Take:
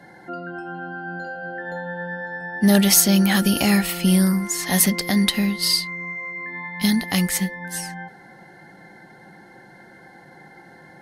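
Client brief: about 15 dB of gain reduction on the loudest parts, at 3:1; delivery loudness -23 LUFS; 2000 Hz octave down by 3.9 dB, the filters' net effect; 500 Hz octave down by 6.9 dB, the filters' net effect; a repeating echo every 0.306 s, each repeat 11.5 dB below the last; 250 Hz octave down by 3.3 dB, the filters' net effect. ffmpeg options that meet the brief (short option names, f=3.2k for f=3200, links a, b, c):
-af "equalizer=f=250:t=o:g=-3.5,equalizer=f=500:t=o:g=-8,equalizer=f=2k:t=o:g=-4,acompressor=threshold=-33dB:ratio=3,aecho=1:1:306|612|918:0.266|0.0718|0.0194,volume=10dB"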